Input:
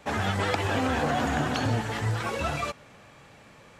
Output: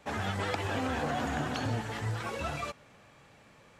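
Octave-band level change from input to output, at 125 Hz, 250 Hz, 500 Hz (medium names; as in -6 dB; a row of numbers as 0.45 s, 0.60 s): -6.0 dB, -6.0 dB, -6.0 dB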